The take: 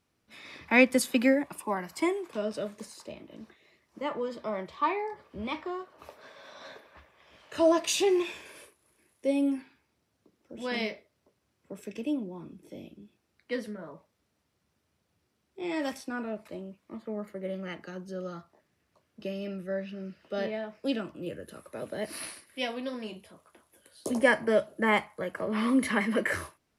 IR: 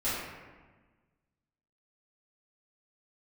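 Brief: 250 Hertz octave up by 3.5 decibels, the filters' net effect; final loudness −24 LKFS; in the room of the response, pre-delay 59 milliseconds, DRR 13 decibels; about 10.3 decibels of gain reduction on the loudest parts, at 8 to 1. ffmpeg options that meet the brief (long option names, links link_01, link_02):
-filter_complex "[0:a]equalizer=frequency=250:width_type=o:gain=4,acompressor=threshold=-26dB:ratio=8,asplit=2[link_01][link_02];[1:a]atrim=start_sample=2205,adelay=59[link_03];[link_02][link_03]afir=irnorm=-1:irlink=0,volume=-22dB[link_04];[link_01][link_04]amix=inputs=2:normalize=0,volume=10dB"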